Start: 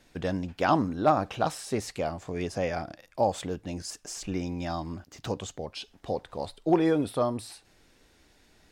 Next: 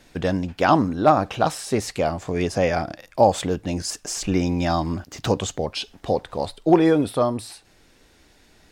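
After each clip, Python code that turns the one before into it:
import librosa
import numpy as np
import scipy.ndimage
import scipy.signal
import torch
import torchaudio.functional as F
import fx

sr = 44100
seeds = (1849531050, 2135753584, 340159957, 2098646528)

y = fx.rider(x, sr, range_db=4, speed_s=2.0)
y = F.gain(torch.from_numpy(y), 7.0).numpy()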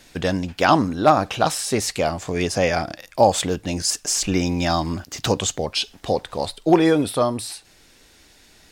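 y = fx.high_shelf(x, sr, hz=2100.0, db=8.0)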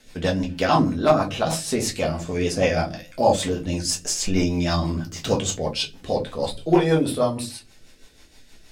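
y = fx.room_shoebox(x, sr, seeds[0], volume_m3=120.0, walls='furnished', distance_m=1.5)
y = fx.rotary(y, sr, hz=6.3)
y = F.gain(torch.from_numpy(y), -3.0).numpy()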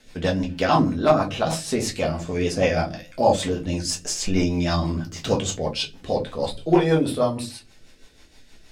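y = fx.high_shelf(x, sr, hz=8500.0, db=-6.5)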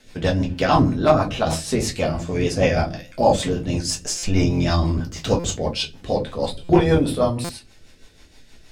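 y = fx.octave_divider(x, sr, octaves=1, level_db=-3.0)
y = fx.buffer_glitch(y, sr, at_s=(4.18, 5.39, 6.64, 7.44), block=256, repeats=8)
y = F.gain(torch.from_numpy(y), 1.5).numpy()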